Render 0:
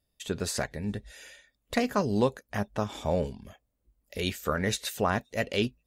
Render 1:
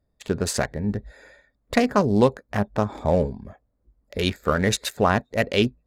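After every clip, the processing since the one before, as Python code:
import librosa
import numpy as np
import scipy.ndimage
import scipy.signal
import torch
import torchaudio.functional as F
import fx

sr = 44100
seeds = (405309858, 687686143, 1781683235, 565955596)

y = fx.wiener(x, sr, points=15)
y = y * librosa.db_to_amplitude(7.5)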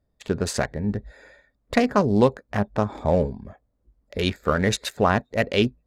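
y = fx.high_shelf(x, sr, hz=8400.0, db=-7.5)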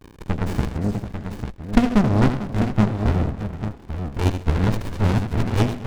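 y = fx.echo_multitap(x, sr, ms=(81, 126, 201, 345, 446, 845), db=(-9.0, -19.5, -19.5, -18.5, -13.5, -7.5))
y = fx.dmg_crackle(y, sr, seeds[0], per_s=200.0, level_db=-42.0)
y = fx.running_max(y, sr, window=65)
y = y * librosa.db_to_amplitude(3.5)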